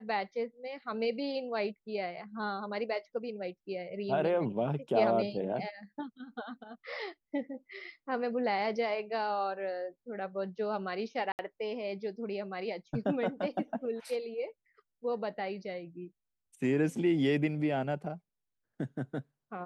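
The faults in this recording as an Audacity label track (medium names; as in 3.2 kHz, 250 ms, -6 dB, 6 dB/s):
11.320000	11.390000	dropout 69 ms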